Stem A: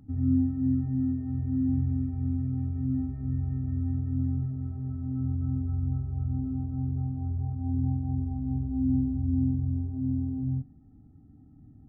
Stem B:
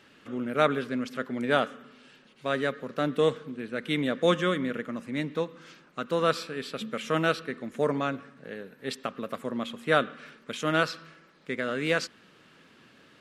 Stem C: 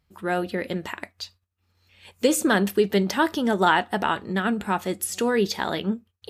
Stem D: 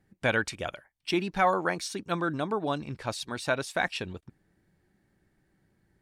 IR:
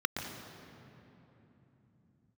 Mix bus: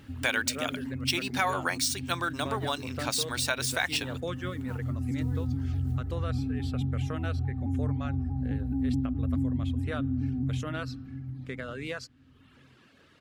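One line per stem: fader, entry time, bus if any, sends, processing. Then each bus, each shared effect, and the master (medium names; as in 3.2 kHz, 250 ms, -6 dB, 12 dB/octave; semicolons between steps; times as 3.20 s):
+2.0 dB, 0.00 s, send -22 dB, echo send -16 dB, vibrato with a chosen wave saw down 4.7 Hz, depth 100 cents; auto duck -17 dB, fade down 0.30 s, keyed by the fourth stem
-1.5 dB, 0.00 s, no send, no echo send, reverb removal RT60 0.8 s; compression 2:1, threshold -37 dBFS, peak gain reduction 11 dB
-13.5 dB, 0.00 s, no send, echo send -17 dB, compression 5:1, threshold -32 dBFS, peak gain reduction 16 dB; modulation noise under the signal 16 dB; tremolo of two beating tones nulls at 1.5 Hz
+2.5 dB, 0.00 s, no send, no echo send, median filter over 3 samples; tilt EQ +4.5 dB/octave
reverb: on, RT60 3.3 s, pre-delay 115 ms
echo: feedback delay 720 ms, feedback 34%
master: compression 2:1, threshold -28 dBFS, peak gain reduction 7 dB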